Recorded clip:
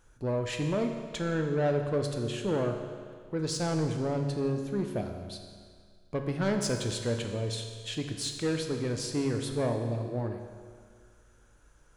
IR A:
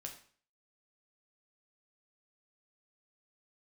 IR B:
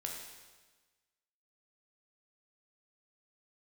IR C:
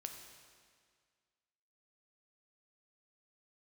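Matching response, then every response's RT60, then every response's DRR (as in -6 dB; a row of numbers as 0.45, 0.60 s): C; 0.45, 1.3, 1.9 s; 1.5, -0.5, 4.0 dB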